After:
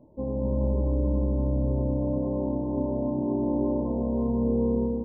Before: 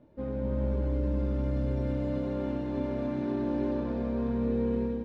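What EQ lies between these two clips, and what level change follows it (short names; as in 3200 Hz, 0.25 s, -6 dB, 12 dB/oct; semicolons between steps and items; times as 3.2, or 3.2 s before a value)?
brick-wall FIR low-pass 1100 Hz; +4.0 dB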